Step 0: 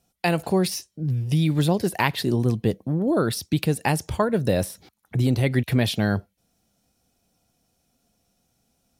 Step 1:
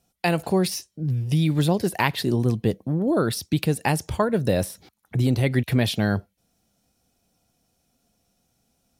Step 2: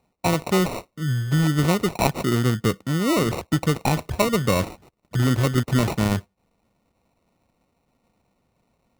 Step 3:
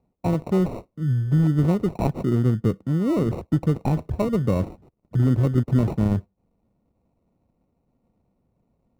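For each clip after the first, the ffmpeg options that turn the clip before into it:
-af anull
-af "acrusher=samples=27:mix=1:aa=0.000001,volume=1dB"
-af "tiltshelf=f=970:g=10,volume=-8dB"

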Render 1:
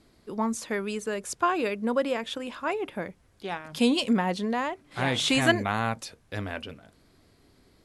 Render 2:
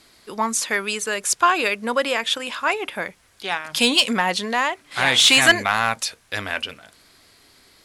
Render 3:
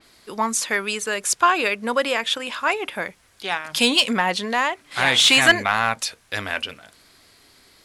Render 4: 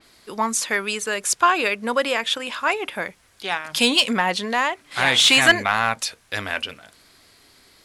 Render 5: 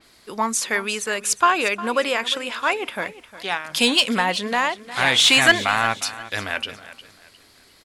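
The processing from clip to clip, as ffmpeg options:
-af "tiltshelf=f=700:g=-9,acontrast=78,volume=-1dB"
-af "adynamicequalizer=threshold=0.0355:dfrequency=4200:dqfactor=0.7:tfrequency=4200:tqfactor=0.7:attack=5:release=100:ratio=0.375:range=3:mode=cutabove:tftype=highshelf"
-af anull
-af "aecho=1:1:356|712|1068:0.158|0.0507|0.0162"

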